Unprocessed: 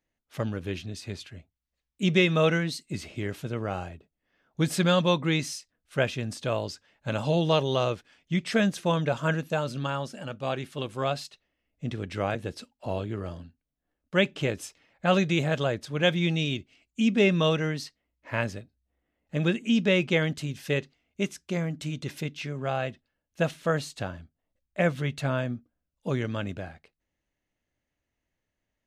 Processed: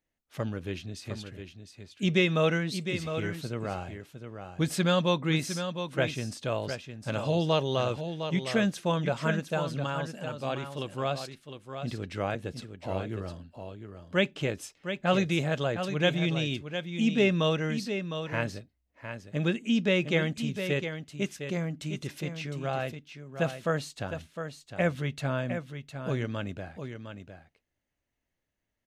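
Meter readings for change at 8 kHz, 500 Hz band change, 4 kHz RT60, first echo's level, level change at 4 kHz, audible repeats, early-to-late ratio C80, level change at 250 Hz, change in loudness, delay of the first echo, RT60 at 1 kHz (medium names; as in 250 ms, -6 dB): -2.0 dB, -2.0 dB, no reverb, -8.5 dB, -2.0 dB, 1, no reverb, -2.0 dB, -2.5 dB, 708 ms, no reverb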